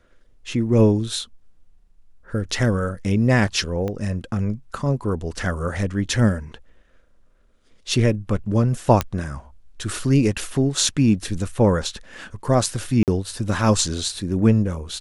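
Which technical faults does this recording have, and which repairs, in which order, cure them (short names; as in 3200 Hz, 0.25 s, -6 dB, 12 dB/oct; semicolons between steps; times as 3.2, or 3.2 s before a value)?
3.88 pop -16 dBFS
9.01 pop -5 dBFS
13.03–13.08 gap 48 ms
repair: de-click; interpolate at 13.03, 48 ms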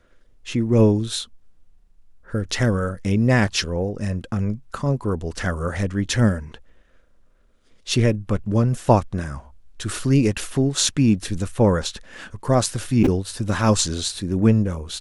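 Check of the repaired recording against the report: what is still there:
3.88 pop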